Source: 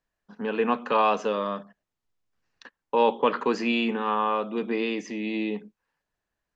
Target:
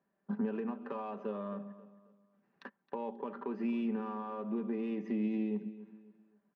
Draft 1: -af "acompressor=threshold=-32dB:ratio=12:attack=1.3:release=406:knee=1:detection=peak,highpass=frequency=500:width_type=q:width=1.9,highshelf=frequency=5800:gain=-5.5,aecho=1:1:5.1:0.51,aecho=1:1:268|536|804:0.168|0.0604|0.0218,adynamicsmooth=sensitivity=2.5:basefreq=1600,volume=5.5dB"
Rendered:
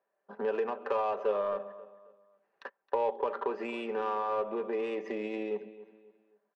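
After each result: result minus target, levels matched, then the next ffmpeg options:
250 Hz band −11.0 dB; downward compressor: peak gain reduction −7.5 dB
-af "acompressor=threshold=-32dB:ratio=12:attack=1.3:release=406:knee=1:detection=peak,highpass=frequency=210:width_type=q:width=1.9,highshelf=frequency=5800:gain=-5.5,aecho=1:1:5.1:0.51,aecho=1:1:268|536|804:0.168|0.0604|0.0218,adynamicsmooth=sensitivity=2.5:basefreq=1600,volume=5.5dB"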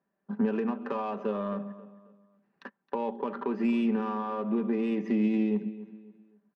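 downward compressor: peak gain reduction −7.5 dB
-af "acompressor=threshold=-40dB:ratio=12:attack=1.3:release=406:knee=1:detection=peak,highpass=frequency=210:width_type=q:width=1.9,highshelf=frequency=5800:gain=-5.5,aecho=1:1:5.1:0.51,aecho=1:1:268|536|804:0.168|0.0604|0.0218,adynamicsmooth=sensitivity=2.5:basefreq=1600,volume=5.5dB"

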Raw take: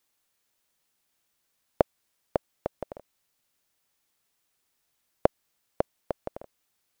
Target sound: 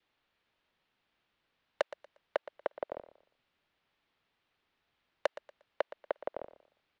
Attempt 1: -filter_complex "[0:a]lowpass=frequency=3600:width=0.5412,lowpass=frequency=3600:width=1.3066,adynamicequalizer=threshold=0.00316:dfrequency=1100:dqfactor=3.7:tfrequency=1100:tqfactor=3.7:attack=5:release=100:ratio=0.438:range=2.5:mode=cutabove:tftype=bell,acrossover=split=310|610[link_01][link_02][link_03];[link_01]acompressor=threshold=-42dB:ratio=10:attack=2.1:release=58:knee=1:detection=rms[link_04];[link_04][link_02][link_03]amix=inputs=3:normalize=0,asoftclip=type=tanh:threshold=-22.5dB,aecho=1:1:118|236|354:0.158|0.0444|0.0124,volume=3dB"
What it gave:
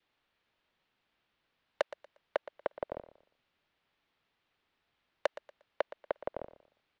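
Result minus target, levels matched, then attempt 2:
downward compressor: peak gain reduction −11 dB
-filter_complex "[0:a]lowpass=frequency=3600:width=0.5412,lowpass=frequency=3600:width=1.3066,adynamicequalizer=threshold=0.00316:dfrequency=1100:dqfactor=3.7:tfrequency=1100:tqfactor=3.7:attack=5:release=100:ratio=0.438:range=2.5:mode=cutabove:tftype=bell,acrossover=split=310|610[link_01][link_02][link_03];[link_01]acompressor=threshold=-54dB:ratio=10:attack=2.1:release=58:knee=1:detection=rms[link_04];[link_04][link_02][link_03]amix=inputs=3:normalize=0,asoftclip=type=tanh:threshold=-22.5dB,aecho=1:1:118|236|354:0.158|0.0444|0.0124,volume=3dB"

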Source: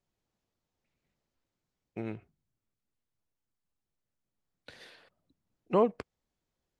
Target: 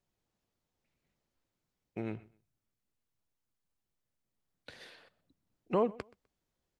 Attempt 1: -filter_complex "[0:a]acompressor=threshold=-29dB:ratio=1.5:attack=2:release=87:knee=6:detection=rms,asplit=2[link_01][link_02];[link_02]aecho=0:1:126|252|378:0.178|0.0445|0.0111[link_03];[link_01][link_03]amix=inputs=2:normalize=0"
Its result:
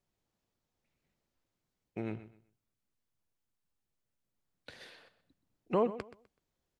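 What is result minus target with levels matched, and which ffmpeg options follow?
echo-to-direct +8 dB
-filter_complex "[0:a]acompressor=threshold=-29dB:ratio=1.5:attack=2:release=87:knee=6:detection=rms,asplit=2[link_01][link_02];[link_02]aecho=0:1:126|252:0.0708|0.0177[link_03];[link_01][link_03]amix=inputs=2:normalize=0"

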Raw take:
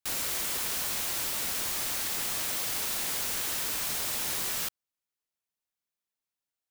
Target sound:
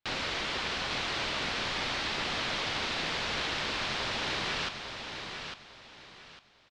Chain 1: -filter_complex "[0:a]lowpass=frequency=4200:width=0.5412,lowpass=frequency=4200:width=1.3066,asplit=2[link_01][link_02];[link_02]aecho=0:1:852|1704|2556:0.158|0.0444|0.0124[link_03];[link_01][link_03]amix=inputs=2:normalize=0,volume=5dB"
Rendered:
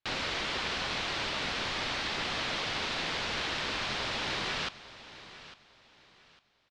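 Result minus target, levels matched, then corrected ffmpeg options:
echo-to-direct −9 dB
-filter_complex "[0:a]lowpass=frequency=4200:width=0.5412,lowpass=frequency=4200:width=1.3066,asplit=2[link_01][link_02];[link_02]aecho=0:1:852|1704|2556:0.447|0.125|0.035[link_03];[link_01][link_03]amix=inputs=2:normalize=0,volume=5dB"

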